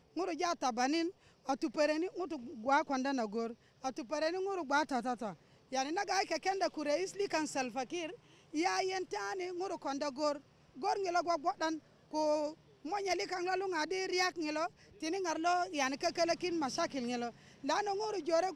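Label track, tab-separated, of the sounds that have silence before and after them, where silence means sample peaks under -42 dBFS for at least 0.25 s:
1.490000	3.530000	sound
3.840000	5.330000	sound
5.720000	8.140000	sound
8.540000	10.380000	sound
10.790000	11.770000	sound
12.130000	12.520000	sound
12.850000	14.670000	sound
15.020000	17.300000	sound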